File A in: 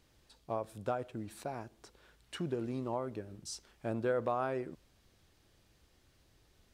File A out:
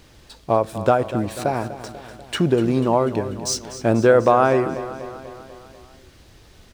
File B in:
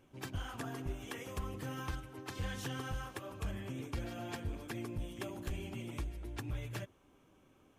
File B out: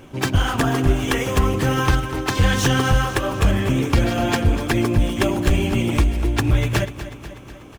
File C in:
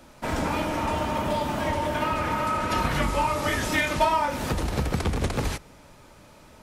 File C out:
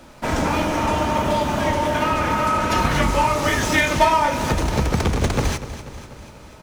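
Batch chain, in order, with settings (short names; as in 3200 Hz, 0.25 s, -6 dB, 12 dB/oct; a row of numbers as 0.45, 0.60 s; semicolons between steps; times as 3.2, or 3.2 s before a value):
median filter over 3 samples; dynamic EQ 6200 Hz, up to +5 dB, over -58 dBFS, Q 4.8; on a send: feedback echo 0.245 s, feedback 60%, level -13.5 dB; on the sum: match loudness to -20 LUFS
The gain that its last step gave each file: +18.5, +22.5, +6.0 dB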